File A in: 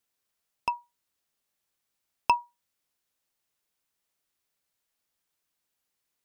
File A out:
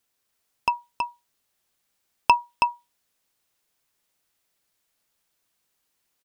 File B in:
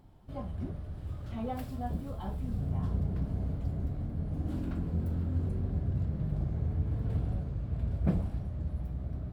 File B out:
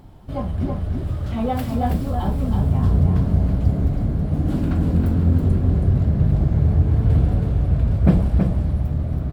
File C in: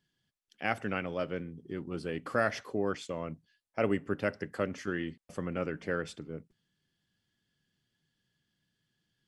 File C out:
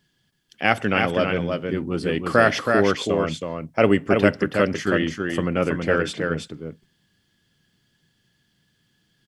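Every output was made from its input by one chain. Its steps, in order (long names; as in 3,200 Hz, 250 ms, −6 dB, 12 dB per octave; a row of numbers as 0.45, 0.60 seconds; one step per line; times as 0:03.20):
single-tap delay 324 ms −4.5 dB
dynamic equaliser 3,300 Hz, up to +5 dB, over −55 dBFS, Q 2.4
normalise the peak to −2 dBFS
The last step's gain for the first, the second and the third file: +5.5, +13.0, +12.0 decibels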